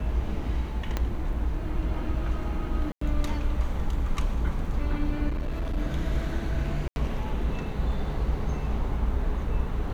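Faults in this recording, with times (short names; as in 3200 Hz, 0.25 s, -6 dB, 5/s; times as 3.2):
0.97 pop -14 dBFS
2.92–3.01 gap 94 ms
5.28–5.78 clipped -25 dBFS
6.88–6.96 gap 81 ms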